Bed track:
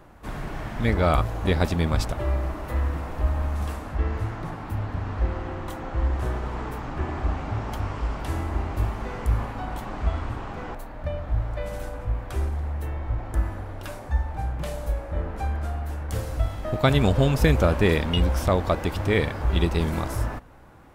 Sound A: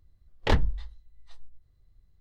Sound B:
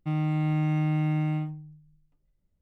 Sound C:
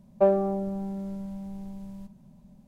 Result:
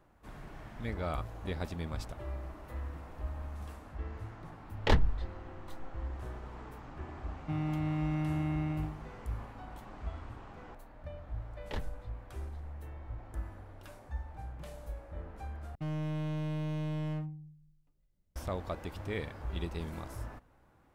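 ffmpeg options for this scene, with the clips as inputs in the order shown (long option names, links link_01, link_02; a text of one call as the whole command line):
ffmpeg -i bed.wav -i cue0.wav -i cue1.wav -filter_complex "[1:a]asplit=2[link_01][link_02];[2:a]asplit=2[link_03][link_04];[0:a]volume=-15dB[link_05];[link_03]asplit=2[link_06][link_07];[link_07]adelay=36,volume=-13dB[link_08];[link_06][link_08]amix=inputs=2:normalize=0[link_09];[link_04]volume=31.5dB,asoftclip=hard,volume=-31.5dB[link_10];[link_05]asplit=2[link_11][link_12];[link_11]atrim=end=15.754[link_13];[link_10]atrim=end=2.61,asetpts=PTS-STARTPTS,volume=-2.5dB[link_14];[link_12]atrim=start=18.356[link_15];[link_01]atrim=end=2.2,asetpts=PTS-STARTPTS,volume=-2.5dB,afade=type=in:duration=0.004:curve=hsin,afade=type=out:start_time=2.196:duration=0.004:curve=hsin,adelay=4400[link_16];[link_09]atrim=end=2.61,asetpts=PTS-STARTPTS,volume=-6dB,afade=type=in:duration=0.004:curve=hsin,afade=type=out:start_time=2.606:duration=0.004:curve=hsin,adelay=7420[link_17];[link_02]atrim=end=2.2,asetpts=PTS-STARTPTS,volume=-15.5dB,afade=type=in:duration=0.004:curve=hsin,afade=type=out:start_time=2.196:duration=0.004:curve=hsin,adelay=11240[link_18];[link_13][link_14]acrossfade=duration=0.004:curve1=hsin:curve2=hsin[link_19];[link_19][link_15]acrossfade=duration=0.004:curve1=hsin:curve2=hsin[link_20];[link_20][link_16][link_17][link_18]amix=inputs=4:normalize=0" out.wav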